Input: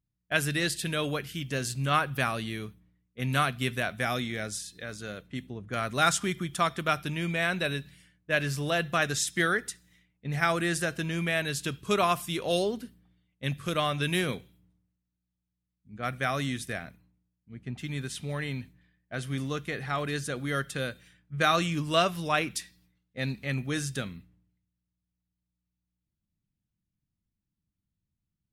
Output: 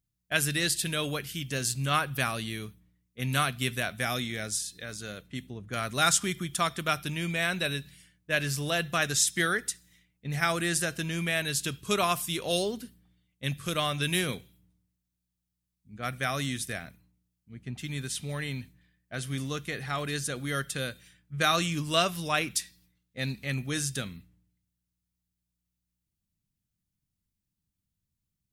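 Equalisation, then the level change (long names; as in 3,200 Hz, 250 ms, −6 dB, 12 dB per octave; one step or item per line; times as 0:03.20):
low-shelf EQ 190 Hz +3.5 dB
high-shelf EQ 3,300 Hz +10 dB
−3.0 dB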